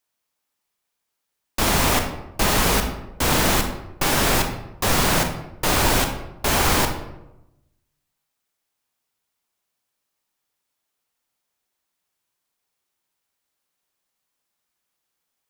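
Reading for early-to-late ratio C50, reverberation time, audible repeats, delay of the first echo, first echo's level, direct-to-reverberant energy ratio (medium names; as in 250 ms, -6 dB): 7.0 dB, 0.90 s, no echo, no echo, no echo, 4.5 dB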